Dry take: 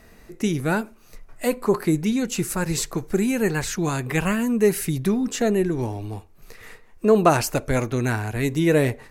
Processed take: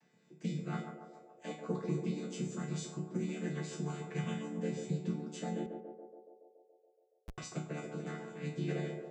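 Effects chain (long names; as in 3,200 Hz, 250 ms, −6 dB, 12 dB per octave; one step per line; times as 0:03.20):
channel vocoder with a chord as carrier minor triad, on D3
high-shelf EQ 2,100 Hz +10 dB
resonators tuned to a chord B2 major, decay 0.41 s
0:05.66–0:07.38: comparator with hysteresis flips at −28.5 dBFS
on a send: feedback echo with a band-pass in the loop 141 ms, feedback 76%, band-pass 560 Hz, level −4.5 dB
on the sum: level +4 dB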